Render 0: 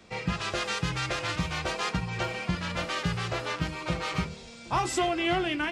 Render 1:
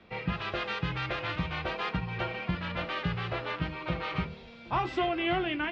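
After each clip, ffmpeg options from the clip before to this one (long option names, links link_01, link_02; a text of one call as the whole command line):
ffmpeg -i in.wav -af "lowpass=frequency=3600:width=0.5412,lowpass=frequency=3600:width=1.3066,volume=-2dB" out.wav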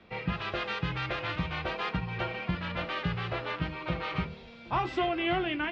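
ffmpeg -i in.wav -af anull out.wav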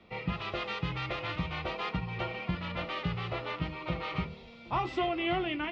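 ffmpeg -i in.wav -af "bandreject=frequency=1600:width=5.8,volume=-1.5dB" out.wav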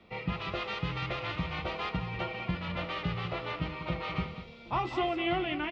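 ffmpeg -i in.wav -af "aecho=1:1:195:0.282" out.wav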